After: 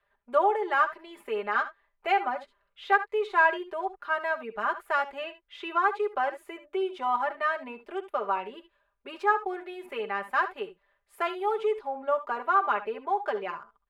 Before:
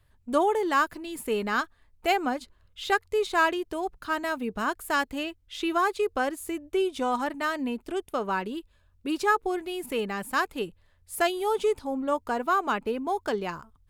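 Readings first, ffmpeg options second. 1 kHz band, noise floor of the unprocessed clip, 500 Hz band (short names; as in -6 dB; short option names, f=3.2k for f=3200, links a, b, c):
+1.0 dB, -64 dBFS, -2.0 dB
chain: -filter_complex "[0:a]acrossover=split=440 2700:gain=0.0794 1 0.0708[a][b][c];[a][b][c]amix=inputs=3:normalize=0,aecho=1:1:5:0.86,asplit=2[d][e];[e]aecho=0:1:65|76:0.168|0.15[f];[d][f]amix=inputs=2:normalize=0,volume=-1dB"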